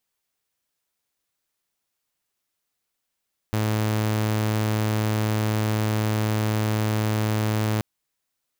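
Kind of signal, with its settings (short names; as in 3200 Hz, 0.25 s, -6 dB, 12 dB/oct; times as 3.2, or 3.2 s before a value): tone saw 108 Hz -18.5 dBFS 4.28 s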